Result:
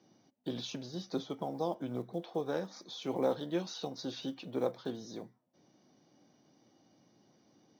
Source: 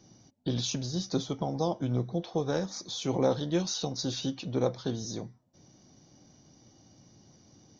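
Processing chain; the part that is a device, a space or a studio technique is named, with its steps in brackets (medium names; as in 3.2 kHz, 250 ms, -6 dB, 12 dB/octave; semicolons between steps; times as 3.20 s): early digital voice recorder (band-pass 230–3500 Hz; block-companded coder 7-bit); trim -4 dB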